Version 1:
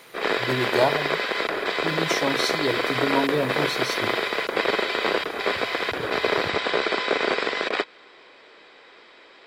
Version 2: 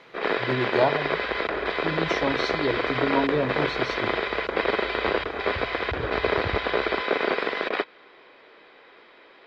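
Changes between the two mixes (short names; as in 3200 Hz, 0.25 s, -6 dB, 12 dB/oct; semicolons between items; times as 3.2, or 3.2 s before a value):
second sound: remove Butterworth band-pass 250 Hz, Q 0.75; master: add air absorption 210 m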